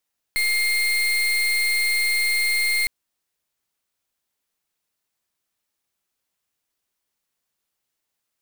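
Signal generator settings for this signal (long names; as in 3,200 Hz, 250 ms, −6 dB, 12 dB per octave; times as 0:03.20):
pulse wave 2,120 Hz, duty 34% −21 dBFS 2.51 s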